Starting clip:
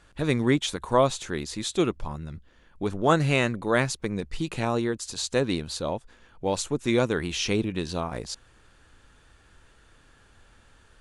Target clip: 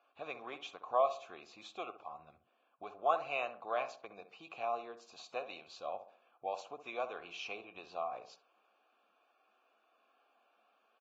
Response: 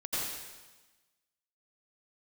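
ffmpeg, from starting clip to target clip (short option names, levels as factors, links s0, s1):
-filter_complex "[0:a]asettb=1/sr,asplit=3[s0][s1][s2];[s0]atrim=end=5.404[s3];[s1]atrim=start=5.4:end=5.94,asetpts=PTS-STARTPTS,afade=t=in:d=0.004:c=qsin,afade=t=out:st=0.536:d=0.004:c=qsin,tiltshelf=f=1500:g=-3.5[s4];[s2]atrim=start=5.936[s5];[s3][s4]acrossfade=d=0.004:c1=hsin:c2=qsin[s6];[s6][s5]acrossfade=d=0.004:c1=qsin:c2=hsin,acrossover=split=480[s7][s8];[s7]acompressor=threshold=0.0158:ratio=6[s9];[s9][s8]amix=inputs=2:normalize=0,asplit=3[s10][s11][s12];[s10]bandpass=f=730:t=q:w=8,volume=1[s13];[s11]bandpass=f=1090:t=q:w=8,volume=0.501[s14];[s12]bandpass=f=2440:t=q:w=8,volume=0.355[s15];[s13][s14][s15]amix=inputs=3:normalize=0,asplit=2[s16][s17];[s17]adelay=64,lowpass=f=1400:p=1,volume=0.316,asplit=2[s18][s19];[s19]adelay=64,lowpass=f=1400:p=1,volume=0.44,asplit=2[s20][s21];[s21]adelay=64,lowpass=f=1400:p=1,volume=0.44,asplit=2[s22][s23];[s23]adelay=64,lowpass=f=1400:p=1,volume=0.44,asplit=2[s24][s25];[s25]adelay=64,lowpass=f=1400:p=1,volume=0.44[s26];[s16][s18][s20][s22][s24][s26]amix=inputs=6:normalize=0" -ar 16000 -c:a libvorbis -b:a 32k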